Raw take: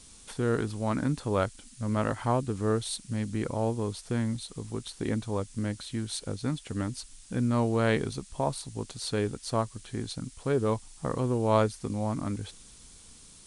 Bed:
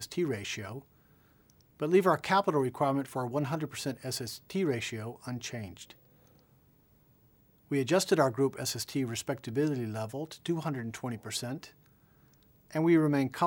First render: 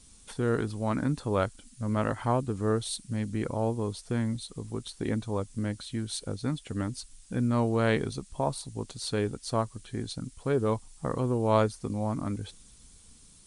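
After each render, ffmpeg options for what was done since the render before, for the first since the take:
-af "afftdn=nr=6:nf=-52"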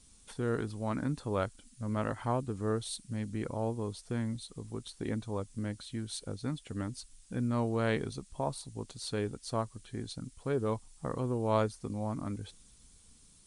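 -af "volume=0.562"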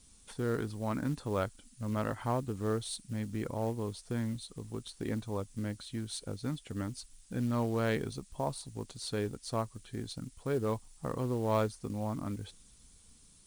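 -af "asoftclip=type=tanh:threshold=0.133,acrusher=bits=6:mode=log:mix=0:aa=0.000001"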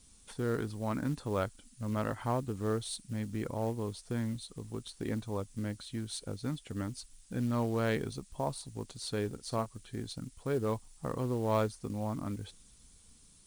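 -filter_complex "[0:a]asettb=1/sr,asplit=3[s0][s1][s2];[s0]atrim=end=9.264[s3];[s1]atrim=start=9.26:end=9.66,asetpts=PTS-STARTPTS,afade=t=in:d=0.004:c=qsin,afade=t=out:st=0.396:d=0.004:c=qsin,asplit=2[s4][s5];[s5]adelay=49,volume=0.211[s6];[s4][s6]amix=inputs=2:normalize=0,atrim=end_sample=17640[s7];[s2]atrim=start=9.656[s8];[s3][s7]acrossfade=d=0.004:c1=hsin:c2=qsin[s9];[s9][s8]acrossfade=d=0.004:c1=qsin:c2=hsin"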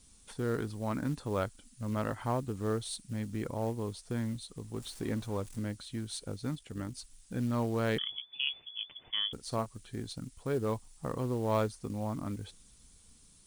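-filter_complex "[0:a]asettb=1/sr,asplit=3[s0][s1][s2];[s0]atrim=end=4.764[s3];[s1]atrim=start=4.76:end=5.59,asetpts=PTS-STARTPTS,afade=t=in:d=0.004:c=qsin,afade=t=out:st=0.826:d=0.004:c=qsin,aeval=exprs='val(0)+0.5*0.00473*sgn(val(0))':c=same[s4];[s2]atrim=start=5.586[s5];[s3][s4]acrossfade=d=0.004:c1=hsin:c2=qsin[s6];[s6][s5]acrossfade=d=0.004:c1=qsin:c2=hsin,asettb=1/sr,asplit=3[s7][s8][s9];[s7]atrim=end=6.554[s10];[s8]atrim=start=6.55:end=6.95,asetpts=PTS-STARTPTS,afade=t=in:d=0.004:c=qsin,afade=t=out:st=0.396:d=0.004:c=qsin,tremolo=f=53:d=0.462[s11];[s9]atrim=start=6.946[s12];[s10][s11]acrossfade=d=0.004:c1=hsin:c2=qsin[s13];[s13][s12]acrossfade=d=0.004:c1=qsin:c2=hsin,asettb=1/sr,asplit=3[s14][s15][s16];[s14]atrim=end=7.984[s17];[s15]atrim=start=7.98:end=9.33,asetpts=PTS-STARTPTS,afade=t=in:d=0.004:c=qsin,afade=t=out:st=1.346:d=0.004:c=qsin,lowpass=f=3000:t=q:w=0.5098,lowpass=f=3000:t=q:w=0.6013,lowpass=f=3000:t=q:w=0.9,lowpass=f=3000:t=q:w=2.563,afreqshift=-3500[s18];[s16]atrim=start=9.326[s19];[s17][s18]acrossfade=d=0.004:c1=hsin:c2=qsin[s20];[s20][s19]acrossfade=d=0.004:c1=qsin:c2=hsin"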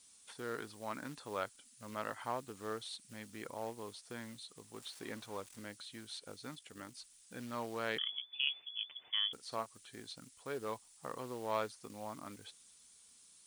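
-filter_complex "[0:a]acrossover=split=4400[s0][s1];[s1]acompressor=threshold=0.00224:ratio=4:attack=1:release=60[s2];[s0][s2]amix=inputs=2:normalize=0,highpass=f=1100:p=1"

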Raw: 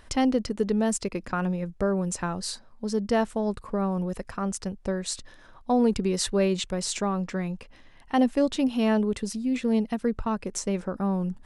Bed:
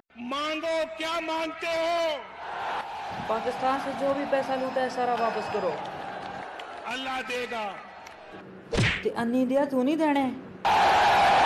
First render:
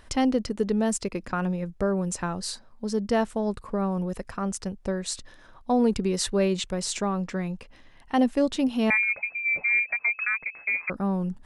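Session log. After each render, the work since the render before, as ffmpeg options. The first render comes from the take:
-filter_complex "[0:a]asettb=1/sr,asplit=3[s0][s1][s2];[s0]atrim=end=8.904[s3];[s1]atrim=start=8.9:end=10.9,asetpts=PTS-STARTPTS,afade=t=in:d=0.004:c=qsin,afade=t=out:st=1.996:d=0.004:c=qsin,lowpass=f=2200:t=q:w=0.5098,lowpass=f=2200:t=q:w=0.6013,lowpass=f=2200:t=q:w=0.9,lowpass=f=2200:t=q:w=2.563,afreqshift=-2600[s4];[s2]atrim=start=10.896[s5];[s3][s4]acrossfade=d=0.004:c1=hsin:c2=qsin[s6];[s6][s5]acrossfade=d=0.004:c1=qsin:c2=hsin"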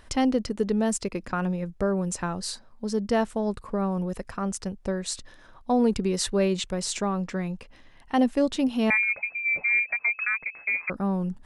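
-af anull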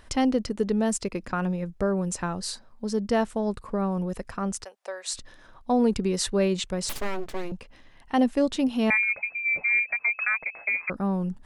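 -filter_complex "[0:a]asplit=3[s0][s1][s2];[s0]afade=t=out:st=4.63:d=0.02[s3];[s1]highpass=f=570:w=0.5412,highpass=f=570:w=1.3066,afade=t=in:st=4.63:d=0.02,afade=t=out:st=5.13:d=0.02[s4];[s2]afade=t=in:st=5.13:d=0.02[s5];[s3][s4][s5]amix=inputs=3:normalize=0,asettb=1/sr,asplit=3[s6][s7][s8];[s6]atrim=end=6.894[s9];[s7]atrim=start=6.89:end=7.52,asetpts=PTS-STARTPTS,afade=t=in:d=0.004:c=qsin,afade=t=out:st=0.626:d=0.004:c=qsin,aeval=exprs='abs(val(0))':c=same[s10];[s8]atrim=start=7.516[s11];[s9][s10]acrossfade=d=0.004:c1=hsin:c2=qsin[s12];[s12][s11]acrossfade=d=0.004:c1=qsin:c2=hsin,asettb=1/sr,asplit=3[s13][s14][s15];[s13]atrim=end=10.124[s16];[s14]atrim=start=10.12:end=10.69,asetpts=PTS-STARTPTS,afade=t=in:d=0.004:c=qsin,afade=t=out:st=0.566:d=0.004:c=qsin,equalizer=f=660:w=1.2:g=11[s17];[s15]atrim=start=10.686[s18];[s16][s17]acrossfade=d=0.004:c1=hsin:c2=qsin[s19];[s19][s18]acrossfade=d=0.004:c1=qsin:c2=hsin"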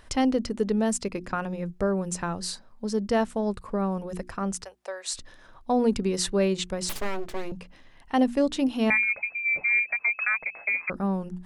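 -af "bandreject=f=60:t=h:w=6,bandreject=f=120:t=h:w=6,bandreject=f=180:t=h:w=6,bandreject=f=240:t=h:w=6,bandreject=f=300:t=h:w=6,bandreject=f=360:t=h:w=6"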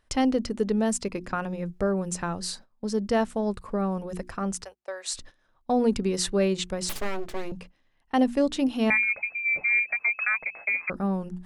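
-af "bandreject=f=980:w=28,agate=range=0.158:threshold=0.00631:ratio=16:detection=peak"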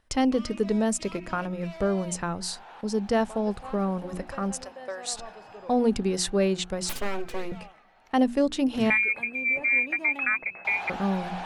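-filter_complex "[1:a]volume=0.158[s0];[0:a][s0]amix=inputs=2:normalize=0"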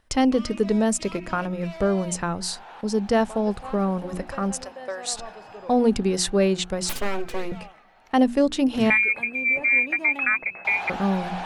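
-af "volume=1.5"

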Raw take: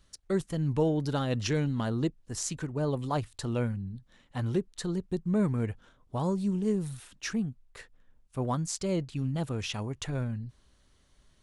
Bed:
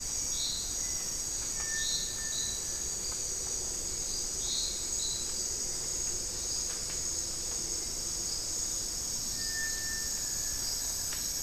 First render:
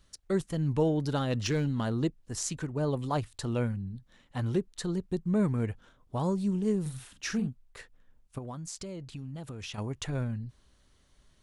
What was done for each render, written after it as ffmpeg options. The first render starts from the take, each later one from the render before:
-filter_complex "[0:a]asettb=1/sr,asplit=3[s0][s1][s2];[s0]atrim=end=1.284[s3];[s1]atrim=start=1.28:end=2.01,asetpts=PTS-STARTPTS,afade=t=in:d=0.004:c=qsin,afade=t=out:st=0.726:d=0.004:c=qsin,asoftclip=type=hard:threshold=0.0794[s4];[s2]atrim=start=2.006[s5];[s3][s4]acrossfade=d=0.004:c1=hsin:c2=qsin[s6];[s6][s5]acrossfade=d=0.004:c1=qsin:c2=hsin,asettb=1/sr,asplit=3[s7][s8][s9];[s7]atrim=end=6.814[s10];[s8]atrim=start=6.81:end=7.48,asetpts=PTS-STARTPTS,afade=t=in:d=0.004:c=qsin,afade=t=out:st=0.666:d=0.004:c=qsin,asplit=2[s11][s12];[s12]adelay=46,volume=0.447[s13];[s11][s13]amix=inputs=2:normalize=0,atrim=end_sample=29547[s14];[s9]atrim=start=7.476[s15];[s10][s14]acrossfade=d=0.004:c1=hsin:c2=qsin[s16];[s16][s15]acrossfade=d=0.004:c1=qsin:c2=hsin,asettb=1/sr,asplit=3[s17][s18][s19];[s17]atrim=end=8.384[s20];[s18]atrim=start=8.38:end=9.78,asetpts=PTS-STARTPTS,afade=t=in:d=0.004:c=qsin,afade=t=out:st=1.396:d=0.004:c=qsin,acompressor=threshold=0.0158:ratio=10:attack=3.2:release=140:knee=1:detection=peak[s21];[s19]atrim=start=9.776[s22];[s20][s21]acrossfade=d=0.004:c1=hsin:c2=qsin[s23];[s23][s22]acrossfade=d=0.004:c1=qsin:c2=hsin"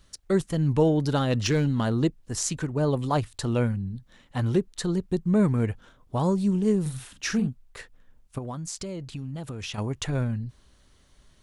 -af "volume=1.88"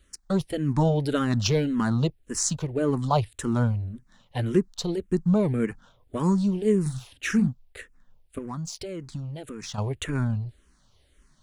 -filter_complex "[0:a]asplit=2[s0][s1];[s1]aeval=exprs='sgn(val(0))*max(abs(val(0))-0.00841,0)':c=same,volume=0.562[s2];[s0][s2]amix=inputs=2:normalize=0,asplit=2[s3][s4];[s4]afreqshift=-1.8[s5];[s3][s5]amix=inputs=2:normalize=1"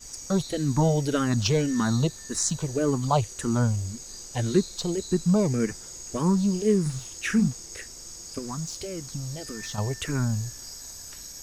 -filter_complex "[1:a]volume=0.447[s0];[0:a][s0]amix=inputs=2:normalize=0"

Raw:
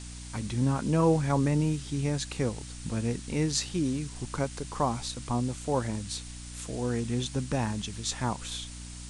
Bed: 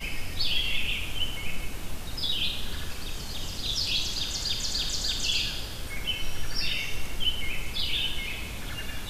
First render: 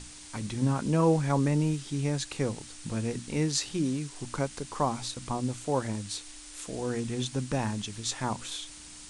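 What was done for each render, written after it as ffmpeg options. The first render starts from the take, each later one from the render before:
-af "bandreject=f=60:t=h:w=6,bandreject=f=120:t=h:w=6,bandreject=f=180:t=h:w=6,bandreject=f=240:t=h:w=6"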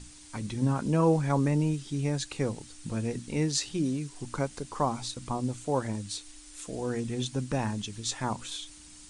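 -af "afftdn=nr=6:nf=-47"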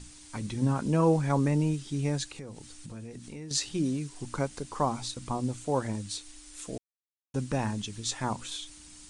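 -filter_complex "[0:a]asettb=1/sr,asplit=3[s0][s1][s2];[s0]atrim=end=2.244[s3];[s1]atrim=start=2.24:end=3.51,asetpts=PTS-STARTPTS,afade=t=in:d=0.004:c=qsin,afade=t=out:st=1.266:d=0.004:c=qsin,acompressor=threshold=0.01:ratio=4:attack=3.2:release=140:knee=1:detection=peak[s4];[s2]atrim=start=3.506[s5];[s3][s4]acrossfade=d=0.004:c1=hsin:c2=qsin[s6];[s6][s5]acrossfade=d=0.004:c1=qsin:c2=hsin,asplit=3[s7][s8][s9];[s7]atrim=end=6.78,asetpts=PTS-STARTPTS,afade=t=out:st=6.776:d=0.004:c=hsin[s10];[s8]atrim=start=6.78:end=7.34,asetpts=PTS-STARTPTS,volume=0[s11];[s9]atrim=start=7.34,asetpts=PTS-STARTPTS,afade=t=in:d=0.004:c=hsin[s12];[s10][s11][s12]concat=n=3:v=0:a=1"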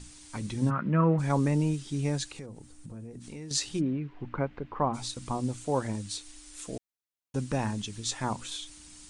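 -filter_complex "[0:a]asplit=3[s0][s1][s2];[s0]afade=t=out:st=0.69:d=0.02[s3];[s1]highpass=130,equalizer=f=180:t=q:w=4:g=7,equalizer=f=270:t=q:w=4:g=-5,equalizer=f=430:t=q:w=4:g=-7,equalizer=f=810:t=q:w=4:g=-9,equalizer=f=1300:t=q:w=4:g=9,equalizer=f=1900:t=q:w=4:g=6,lowpass=f=2500:w=0.5412,lowpass=f=2500:w=1.3066,afade=t=in:st=0.69:d=0.02,afade=t=out:st=1.18:d=0.02[s4];[s2]afade=t=in:st=1.18:d=0.02[s5];[s3][s4][s5]amix=inputs=3:normalize=0,asplit=3[s6][s7][s8];[s6]afade=t=out:st=2.45:d=0.02[s9];[s7]equalizer=f=4000:t=o:w=2.9:g=-13,afade=t=in:st=2.45:d=0.02,afade=t=out:st=3.2:d=0.02[s10];[s8]afade=t=in:st=3.2:d=0.02[s11];[s9][s10][s11]amix=inputs=3:normalize=0,asplit=3[s12][s13][s14];[s12]afade=t=out:st=3.79:d=0.02[s15];[s13]lowpass=f=2500:w=0.5412,lowpass=f=2500:w=1.3066,afade=t=in:st=3.79:d=0.02,afade=t=out:st=4.93:d=0.02[s16];[s14]afade=t=in:st=4.93:d=0.02[s17];[s15][s16][s17]amix=inputs=3:normalize=0"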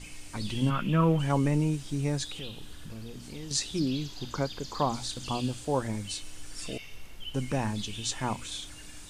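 -filter_complex "[1:a]volume=0.2[s0];[0:a][s0]amix=inputs=2:normalize=0"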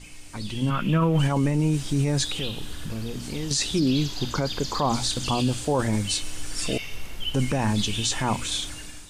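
-af "dynaudnorm=f=620:g=3:m=3.35,alimiter=limit=0.188:level=0:latency=1:release=12"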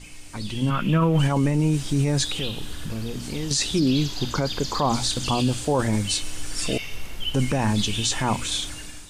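-af "volume=1.19"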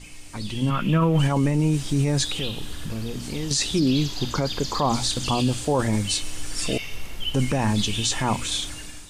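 -af "bandreject=f=1500:w=30"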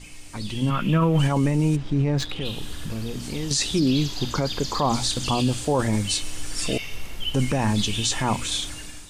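-filter_complex "[0:a]asplit=3[s0][s1][s2];[s0]afade=t=out:st=1.75:d=0.02[s3];[s1]adynamicsmooth=sensitivity=1.5:basefreq=2000,afade=t=in:st=1.75:d=0.02,afade=t=out:st=2.44:d=0.02[s4];[s2]afade=t=in:st=2.44:d=0.02[s5];[s3][s4][s5]amix=inputs=3:normalize=0"

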